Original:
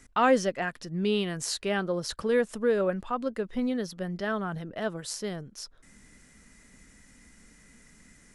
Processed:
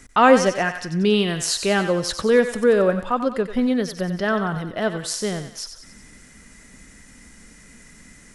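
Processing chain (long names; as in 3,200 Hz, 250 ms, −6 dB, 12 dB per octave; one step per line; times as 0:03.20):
feedback echo with a high-pass in the loop 92 ms, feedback 52%, high-pass 640 Hz, level −8.5 dB
level +8.5 dB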